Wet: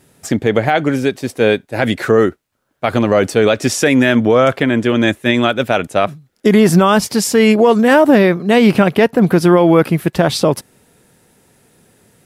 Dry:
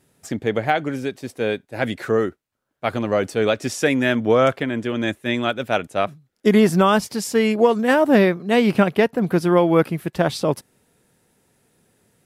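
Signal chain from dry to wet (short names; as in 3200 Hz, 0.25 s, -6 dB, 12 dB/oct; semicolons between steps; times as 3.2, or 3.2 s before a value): maximiser +11 dB; gain -1 dB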